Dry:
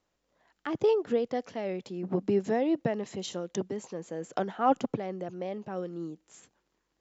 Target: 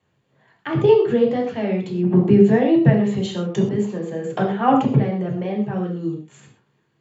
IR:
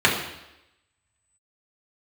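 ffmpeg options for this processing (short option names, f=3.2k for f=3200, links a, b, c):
-filter_complex "[0:a]equalizer=f=130:w=1.4:g=13[a];[1:a]atrim=start_sample=2205,atrim=end_sample=6174[b];[a][b]afir=irnorm=-1:irlink=0,volume=-10.5dB"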